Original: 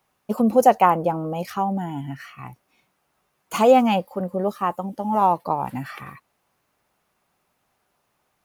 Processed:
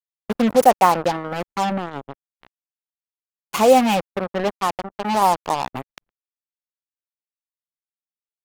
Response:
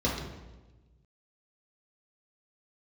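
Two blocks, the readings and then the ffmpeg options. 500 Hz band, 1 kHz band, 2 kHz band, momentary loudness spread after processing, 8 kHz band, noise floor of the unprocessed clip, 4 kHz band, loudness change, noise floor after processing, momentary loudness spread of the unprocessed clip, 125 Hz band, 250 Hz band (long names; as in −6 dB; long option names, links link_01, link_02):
+1.5 dB, +1.5 dB, +4.5 dB, 16 LU, +7.5 dB, −72 dBFS, +7.0 dB, +1.5 dB, below −85 dBFS, 17 LU, −2.0 dB, 0.0 dB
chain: -af "acrusher=bits=3:mix=0:aa=0.5,lowshelf=frequency=130:gain=-5,anlmdn=0.631,volume=1.5dB"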